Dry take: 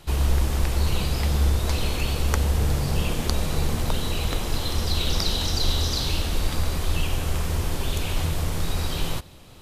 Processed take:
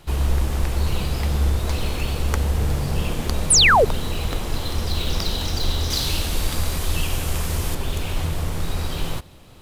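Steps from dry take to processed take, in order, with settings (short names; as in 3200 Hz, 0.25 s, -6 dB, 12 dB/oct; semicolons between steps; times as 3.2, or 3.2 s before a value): 5.9–7.75 high shelf 3700 Hz +9 dB; in parallel at -10 dB: sample-rate reducer 8000 Hz, jitter 0%; 3.5–3.85 on the sum: painted sound fall 380–11000 Hz -12 dBFS; gain -1.5 dB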